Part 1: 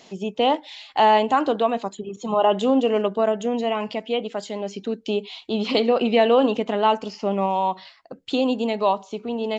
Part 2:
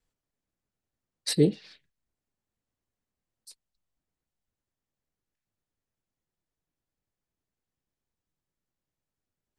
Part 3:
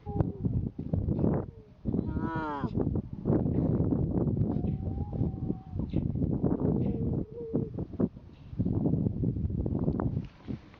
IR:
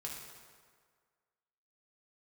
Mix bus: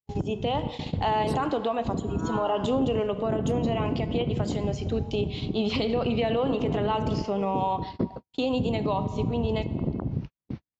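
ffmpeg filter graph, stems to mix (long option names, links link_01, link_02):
-filter_complex "[0:a]adelay=50,volume=-3.5dB,asplit=2[link_01][link_02];[link_02]volume=-7dB[link_03];[1:a]volume=-12dB[link_04];[2:a]volume=2dB,asplit=2[link_05][link_06];[link_06]volume=-21dB[link_07];[3:a]atrim=start_sample=2205[link_08];[link_03][link_07]amix=inputs=2:normalize=0[link_09];[link_09][link_08]afir=irnorm=-1:irlink=0[link_10];[link_01][link_04][link_05][link_10]amix=inputs=4:normalize=0,agate=range=-52dB:threshold=-33dB:ratio=16:detection=peak,alimiter=limit=-17dB:level=0:latency=1:release=125"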